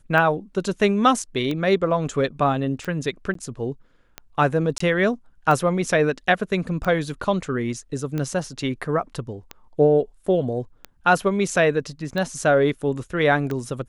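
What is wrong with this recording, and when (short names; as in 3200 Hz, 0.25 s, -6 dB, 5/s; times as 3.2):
tick 45 rpm -15 dBFS
3.34–3.35 gap 13 ms
4.78–4.8 gap 24 ms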